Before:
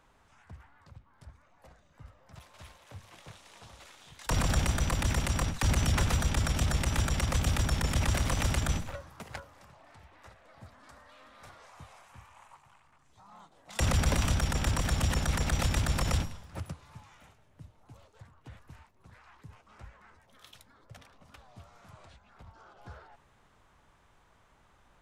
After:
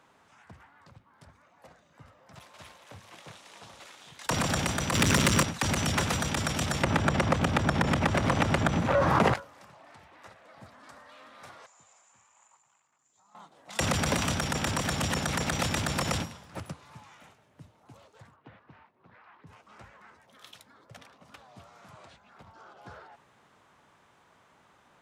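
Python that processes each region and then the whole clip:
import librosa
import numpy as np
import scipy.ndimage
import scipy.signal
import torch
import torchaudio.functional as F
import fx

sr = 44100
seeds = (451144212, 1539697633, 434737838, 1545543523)

y = fx.chain(x, sr, fx.peak_eq(hz=760.0, db=-14.0, octaves=0.3),
    fx.leveller(passes=3), at=(4.94, 5.43))
y = fx.chain(y, sr, fx.lowpass(hz=1300.0, slope=6),
    fx.env_flatten(amount_pct=100), at=(6.83, 9.34))
y = fx.chain(y, sr, fx.ladder_lowpass(hz=7300.0, resonance_pct=90),
    fx.low_shelf(hz=120.0, db=-10.5), at=(11.66, 13.35))
y = fx.chain(y, sr, fx.highpass(hz=160.0, slope=6),
    fx.air_absorb(metres=320.0), at=(18.36, 19.47))
y = scipy.signal.sosfilt(scipy.signal.butter(2, 150.0, 'highpass', fs=sr, output='sos'), y)
y = fx.high_shelf(y, sr, hz=11000.0, db=-5.0)
y = y * 10.0 ** (4.0 / 20.0)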